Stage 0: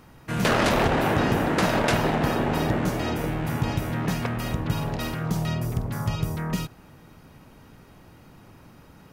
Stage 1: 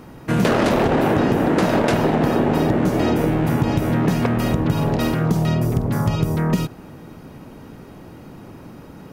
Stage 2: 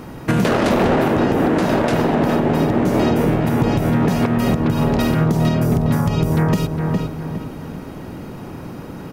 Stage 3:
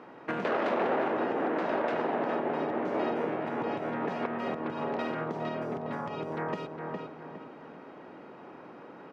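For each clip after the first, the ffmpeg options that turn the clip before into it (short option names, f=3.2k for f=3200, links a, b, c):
-af "equalizer=f=320:t=o:w=2.6:g=8.5,acompressor=threshold=-19dB:ratio=6,volume=5dB"
-filter_complex "[0:a]asplit=2[a][b];[b]adelay=410,lowpass=f=2.4k:p=1,volume=-7dB,asplit=2[c][d];[d]adelay=410,lowpass=f=2.4k:p=1,volume=0.38,asplit=2[e][f];[f]adelay=410,lowpass=f=2.4k:p=1,volume=0.38,asplit=2[g][h];[h]adelay=410,lowpass=f=2.4k:p=1,volume=0.38[i];[c][e][g][i]amix=inputs=4:normalize=0[j];[a][j]amix=inputs=2:normalize=0,alimiter=limit=-14dB:level=0:latency=1:release=331,volume=6.5dB"
-af "highpass=410,lowpass=2.3k,volume=-9dB"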